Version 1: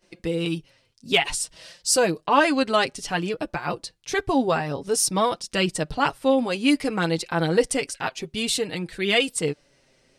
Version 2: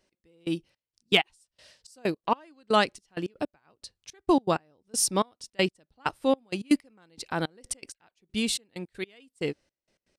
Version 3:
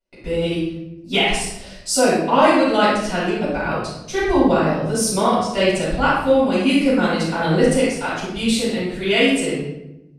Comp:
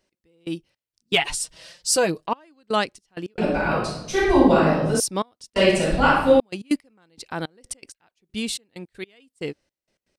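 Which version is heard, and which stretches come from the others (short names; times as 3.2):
2
1.15–2.26 from 1
3.38–5 from 3
5.56–6.4 from 3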